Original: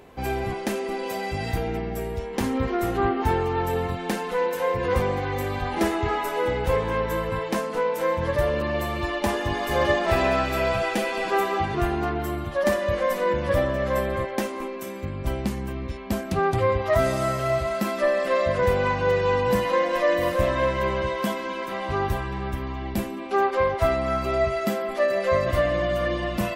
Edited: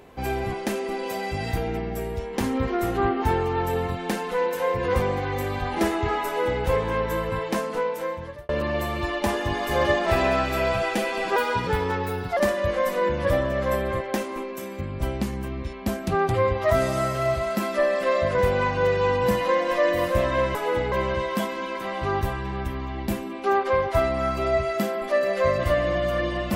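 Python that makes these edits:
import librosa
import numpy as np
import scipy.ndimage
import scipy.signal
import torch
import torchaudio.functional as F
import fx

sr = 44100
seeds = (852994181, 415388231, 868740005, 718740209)

y = fx.edit(x, sr, fx.duplicate(start_s=6.26, length_s=0.37, to_s=20.79),
    fx.fade_out_span(start_s=7.71, length_s=0.78),
    fx.speed_span(start_s=11.36, length_s=1.25, speed=1.24), tone=tone)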